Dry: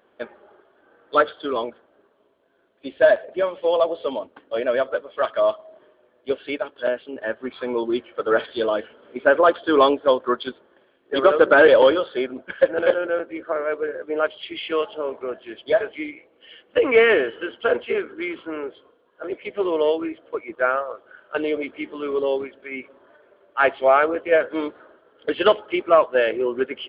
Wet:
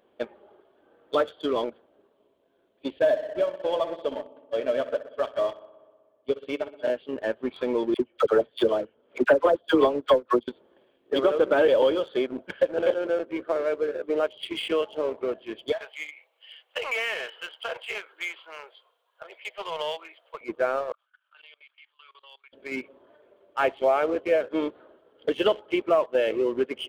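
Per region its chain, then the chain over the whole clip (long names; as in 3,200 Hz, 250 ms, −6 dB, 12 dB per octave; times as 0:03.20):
0:02.99–0:06.90: comb filter 6.9 ms, depth 36% + feedback echo with a low-pass in the loop 62 ms, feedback 78%, low-pass 3,800 Hz, level −10.5 dB + expander for the loud parts, over −35 dBFS
0:07.94–0:10.48: high-shelf EQ 3,400 Hz −7.5 dB + transient designer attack +11 dB, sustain −11 dB + all-pass dispersion lows, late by 60 ms, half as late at 860 Hz
0:15.72–0:20.41: high-pass filter 740 Hz 24 dB per octave + downward compressor 3 to 1, threshold −26 dBFS + high-shelf EQ 4,200 Hz +7.5 dB
0:20.92–0:22.53: high-pass filter 1,300 Hz 24 dB per octave + parametric band 2,000 Hz −4.5 dB 0.35 octaves + output level in coarse steps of 23 dB
whole clip: parametric band 1,500 Hz −8.5 dB 0.98 octaves; leveller curve on the samples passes 1; downward compressor 2 to 1, threshold −25 dBFS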